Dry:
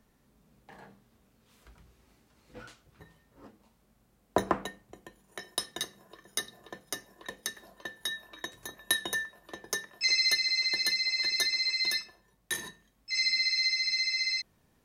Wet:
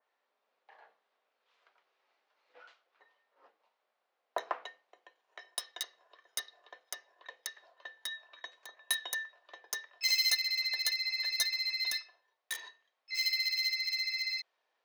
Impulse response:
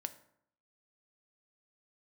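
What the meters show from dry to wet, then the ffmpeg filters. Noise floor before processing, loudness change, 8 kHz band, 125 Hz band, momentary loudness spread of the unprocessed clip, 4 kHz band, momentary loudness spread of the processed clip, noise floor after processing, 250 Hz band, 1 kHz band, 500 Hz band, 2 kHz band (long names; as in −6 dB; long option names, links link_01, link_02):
−69 dBFS, −3.5 dB, −3.5 dB, below −25 dB, 19 LU, −4.0 dB, 18 LU, −83 dBFS, below −20 dB, −6.0 dB, −10.0 dB, −4.5 dB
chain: -filter_complex "[0:a]highpass=frequency=550:width=0.5412,highpass=frequency=550:width=1.3066,acrossover=split=4700[link_01][link_02];[link_02]acrusher=bits=4:mix=0:aa=0.5[link_03];[link_01][link_03]amix=inputs=2:normalize=0,adynamicequalizer=threshold=0.00891:dfrequency=2600:dqfactor=0.7:tfrequency=2600:tqfactor=0.7:attack=5:release=100:ratio=0.375:range=3:mode=boostabove:tftype=highshelf,volume=-6dB"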